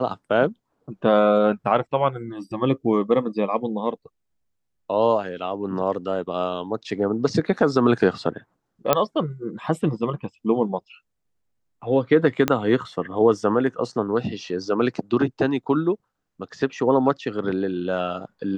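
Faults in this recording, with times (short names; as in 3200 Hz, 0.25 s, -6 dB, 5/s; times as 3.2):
8.93 pop -3 dBFS
12.48 pop -6 dBFS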